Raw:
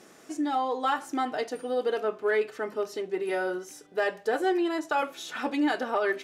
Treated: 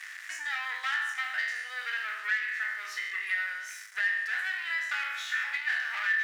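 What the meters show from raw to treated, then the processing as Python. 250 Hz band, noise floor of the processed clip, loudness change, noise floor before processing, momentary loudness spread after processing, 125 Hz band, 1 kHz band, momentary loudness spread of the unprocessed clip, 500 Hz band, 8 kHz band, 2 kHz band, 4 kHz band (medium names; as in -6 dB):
under -40 dB, -44 dBFS, -1.5 dB, -54 dBFS, 6 LU, no reading, -10.5 dB, 6 LU, under -30 dB, 0.0 dB, +7.5 dB, +2.0 dB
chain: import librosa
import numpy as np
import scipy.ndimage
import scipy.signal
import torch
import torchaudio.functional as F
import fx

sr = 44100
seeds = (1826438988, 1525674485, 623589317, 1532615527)

y = fx.spec_trails(x, sr, decay_s=0.77)
y = fx.high_shelf(y, sr, hz=8700.0, db=-9.0)
y = fx.leveller(y, sr, passes=3)
y = fx.ladder_highpass(y, sr, hz=1700.0, resonance_pct=75)
y = fx.band_squash(y, sr, depth_pct=70)
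y = F.gain(torch.from_numpy(y), -2.5).numpy()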